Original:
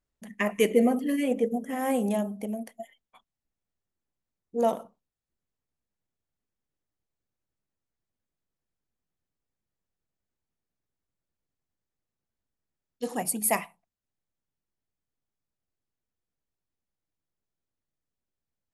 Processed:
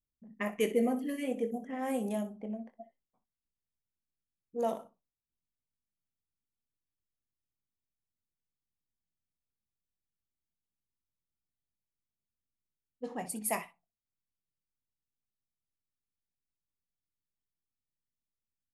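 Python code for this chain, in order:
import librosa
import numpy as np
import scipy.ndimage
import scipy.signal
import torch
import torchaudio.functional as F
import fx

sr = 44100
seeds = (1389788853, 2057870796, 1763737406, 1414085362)

y = fx.env_lowpass(x, sr, base_hz=300.0, full_db=-23.5)
y = fx.room_early_taps(y, sr, ms=(23, 62), db=(-11.0, -14.5))
y = F.gain(torch.from_numpy(y), -7.5).numpy()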